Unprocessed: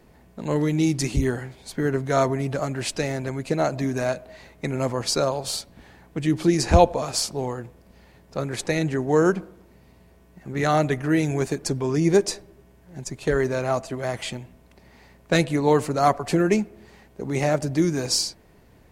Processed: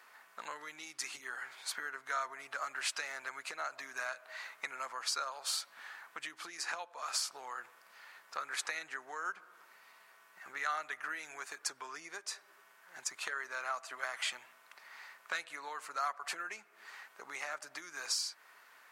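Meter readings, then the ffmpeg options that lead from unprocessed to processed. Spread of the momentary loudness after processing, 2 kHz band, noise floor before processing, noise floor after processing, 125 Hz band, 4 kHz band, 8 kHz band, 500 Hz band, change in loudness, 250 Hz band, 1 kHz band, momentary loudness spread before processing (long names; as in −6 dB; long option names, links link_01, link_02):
17 LU, −6.5 dB, −54 dBFS, −63 dBFS, below −40 dB, −9.5 dB, −9.5 dB, −28.0 dB, −16.0 dB, −38.5 dB, −13.5 dB, 12 LU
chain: -af "acompressor=threshold=-32dB:ratio=10,highpass=frequency=1300:width_type=q:width=2.8"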